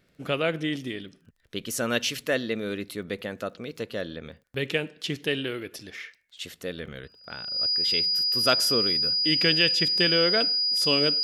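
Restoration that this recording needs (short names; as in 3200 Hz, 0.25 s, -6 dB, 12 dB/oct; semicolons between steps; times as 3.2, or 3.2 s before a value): clip repair -8.5 dBFS; de-click; notch 4900 Hz, Q 30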